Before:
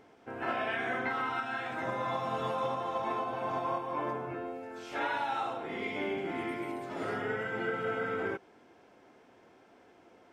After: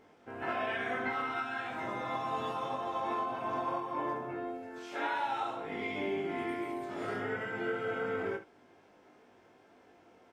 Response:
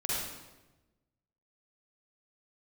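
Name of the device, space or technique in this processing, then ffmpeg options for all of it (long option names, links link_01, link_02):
slapback doubling: -filter_complex "[0:a]asplit=3[link_01][link_02][link_03];[link_02]adelay=20,volume=-3dB[link_04];[link_03]adelay=69,volume=-10.5dB[link_05];[link_01][link_04][link_05]amix=inputs=3:normalize=0,asettb=1/sr,asplit=3[link_06][link_07][link_08];[link_06]atrim=end=4.784[link_09];[link_07]atrim=start=4.78:end=5.26,asetpts=PTS-STARTPTS,afade=type=in:duration=0.004:curve=qsin,afade=type=out:start_time=0.476:duration=0.004:curve=qsin,highpass=180[link_10];[link_08]atrim=start=5.256[link_11];[link_09][link_10]acrossfade=duration=0.004:curve1=hsin:curve2=qsin[link_12];[link_12][link_11]acrossfade=duration=0.004:curve1=qsin:curve2=hsin,volume=-3.5dB"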